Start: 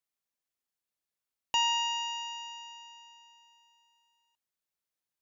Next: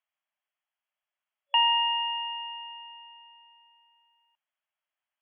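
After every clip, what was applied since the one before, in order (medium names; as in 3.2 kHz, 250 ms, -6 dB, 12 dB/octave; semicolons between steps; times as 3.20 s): FFT band-pass 570–3400 Hz; trim +5.5 dB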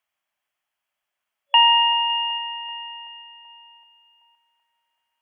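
two-band feedback delay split 2 kHz, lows 382 ms, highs 279 ms, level -14 dB; trim +8 dB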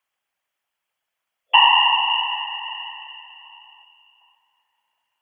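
whisper effect; trim +1.5 dB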